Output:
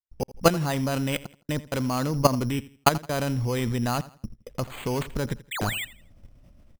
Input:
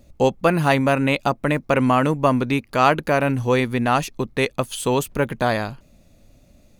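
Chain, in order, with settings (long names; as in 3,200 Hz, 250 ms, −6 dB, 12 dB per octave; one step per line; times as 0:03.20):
low-shelf EQ 140 Hz +11 dB
output level in coarse steps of 13 dB
gate pattern ".x.xxxxxxxx." 131 BPM −60 dB
sound drawn into the spectrogram fall, 0:05.51–0:05.85, 1,800–9,400 Hz −31 dBFS
on a send: repeating echo 83 ms, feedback 31%, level −18 dB
on the sum: bad sample-rate conversion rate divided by 8×, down none, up hold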